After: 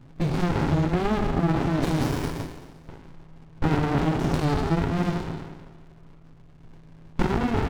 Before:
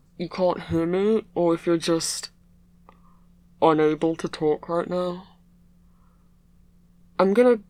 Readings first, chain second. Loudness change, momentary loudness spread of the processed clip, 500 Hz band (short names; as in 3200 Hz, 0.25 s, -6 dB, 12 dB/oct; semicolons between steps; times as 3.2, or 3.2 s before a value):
-2.0 dB, 12 LU, -8.0 dB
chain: spectral trails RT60 1.44 s; crackle 290/s -40 dBFS; de-hum 98.04 Hz, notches 4; low-pass opened by the level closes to 2400 Hz, open at -17.5 dBFS; in parallel at 0 dB: compressor, threshold -27 dBFS, peak gain reduction 15.5 dB; on the sum: limiter -10.5 dBFS, peak gain reduction 9.5 dB; comb 7.2 ms, depth 48%; frequency shift -14 Hz; downsampling 16000 Hz; running maximum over 65 samples